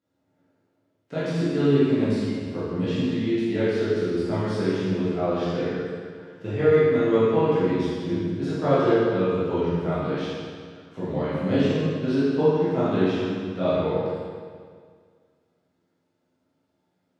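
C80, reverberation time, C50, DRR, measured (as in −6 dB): −1.0 dB, 1.9 s, −4.0 dB, −12.0 dB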